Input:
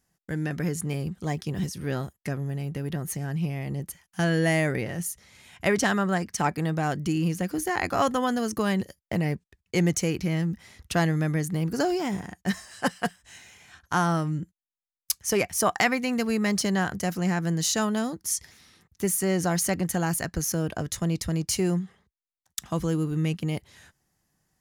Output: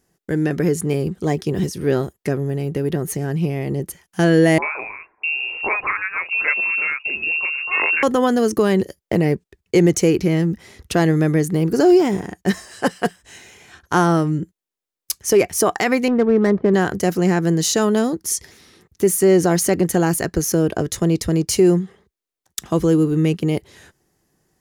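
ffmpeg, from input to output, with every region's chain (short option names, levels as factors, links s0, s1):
-filter_complex "[0:a]asettb=1/sr,asplit=3[s0][s1][s2];[s0]atrim=end=4.584[s3];[s1]atrim=start=4.58:end=8.03,asetpts=PTS-STARTPTS,afade=t=in:d=0.004:c=qsin,afade=t=out:st=3.446:d=0.004:c=qsin,acrossover=split=410|1800[s4][s5][s6];[s5]adelay=40[s7];[s4]adelay=650[s8];[s8][s7][s6]amix=inputs=3:normalize=0,atrim=end_sample=152145,lowpass=f=2500:t=q:w=0.5098,lowpass=f=2500:t=q:w=0.6013,lowpass=f=2500:t=q:w=0.9,lowpass=f=2500:t=q:w=2.563,afreqshift=-2900[s9];[s2]atrim=start=8.026[s10];[s3][s9]acrossfade=d=0.004:c1=hsin:c2=qsin[s11];[s11][s10]acrossfade=d=0.004:c1=qsin:c2=hsin,asettb=1/sr,asplit=3[s12][s13][s14];[s12]atrim=end=16.084[s15];[s13]atrim=start=16.08:end=16.74,asetpts=PTS-STARTPTS,afade=t=in:d=0.004:c=qsin,afade=t=out:st=0.656:d=0.004:c=qsin,lowpass=f=1900:w=0.5412,lowpass=f=1900:w=1.3066,adynamicsmooth=sensitivity=6.5:basefreq=670[s16];[s14]atrim=start=16.736[s17];[s15][s16]acrossfade=d=0.004:c1=hsin:c2=qsin[s18];[s18][s17]acrossfade=d=0.004:c1=qsin:c2=hsin,equalizer=f=390:t=o:w=0.9:g=11,alimiter=level_in=3.16:limit=0.891:release=50:level=0:latency=1,volume=0.596"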